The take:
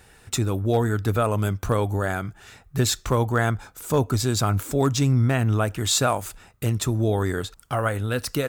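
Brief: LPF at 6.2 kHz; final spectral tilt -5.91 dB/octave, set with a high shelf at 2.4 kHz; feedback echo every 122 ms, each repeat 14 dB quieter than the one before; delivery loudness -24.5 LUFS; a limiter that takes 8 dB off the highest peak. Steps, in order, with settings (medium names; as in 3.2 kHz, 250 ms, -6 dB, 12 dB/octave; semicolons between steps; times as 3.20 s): low-pass 6.2 kHz; treble shelf 2.4 kHz -5 dB; peak limiter -18.5 dBFS; feedback delay 122 ms, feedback 20%, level -14 dB; trim +3.5 dB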